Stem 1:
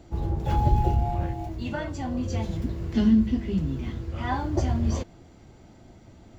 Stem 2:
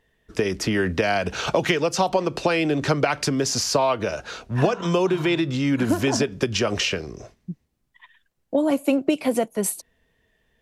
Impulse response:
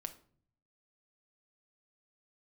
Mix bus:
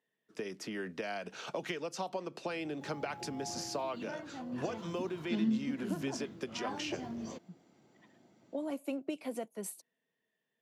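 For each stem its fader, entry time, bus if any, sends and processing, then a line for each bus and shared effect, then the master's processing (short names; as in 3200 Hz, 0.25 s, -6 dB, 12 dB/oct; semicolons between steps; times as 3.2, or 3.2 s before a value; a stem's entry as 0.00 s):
3.09 s -22 dB -> 3.53 s -11.5 dB, 2.35 s, no send, dry
-17.0 dB, 0.00 s, no send, dry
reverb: off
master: HPF 160 Hz 24 dB/oct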